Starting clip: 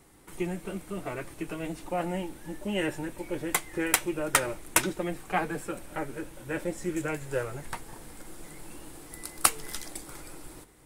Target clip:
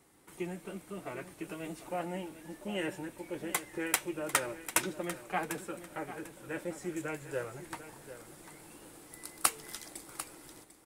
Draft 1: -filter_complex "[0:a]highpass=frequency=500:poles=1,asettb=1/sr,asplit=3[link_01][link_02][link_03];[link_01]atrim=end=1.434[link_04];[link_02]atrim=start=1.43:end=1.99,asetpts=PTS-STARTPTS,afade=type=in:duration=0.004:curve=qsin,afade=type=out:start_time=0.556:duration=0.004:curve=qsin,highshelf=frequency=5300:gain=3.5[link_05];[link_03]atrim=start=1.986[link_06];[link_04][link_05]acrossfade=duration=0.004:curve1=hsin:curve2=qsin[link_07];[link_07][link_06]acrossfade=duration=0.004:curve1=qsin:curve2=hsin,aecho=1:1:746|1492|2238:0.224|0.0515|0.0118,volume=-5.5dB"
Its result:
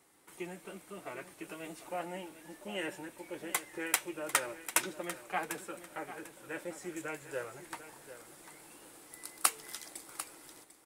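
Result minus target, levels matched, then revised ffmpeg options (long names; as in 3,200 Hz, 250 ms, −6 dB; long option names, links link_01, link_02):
125 Hz band −7.0 dB
-filter_complex "[0:a]highpass=frequency=140:poles=1,asettb=1/sr,asplit=3[link_01][link_02][link_03];[link_01]atrim=end=1.434[link_04];[link_02]atrim=start=1.43:end=1.99,asetpts=PTS-STARTPTS,afade=type=in:duration=0.004:curve=qsin,afade=type=out:start_time=0.556:duration=0.004:curve=qsin,highshelf=frequency=5300:gain=3.5[link_05];[link_03]atrim=start=1.986[link_06];[link_04][link_05]acrossfade=duration=0.004:curve1=hsin:curve2=qsin[link_07];[link_07][link_06]acrossfade=duration=0.004:curve1=qsin:curve2=hsin,aecho=1:1:746|1492|2238:0.224|0.0515|0.0118,volume=-5.5dB"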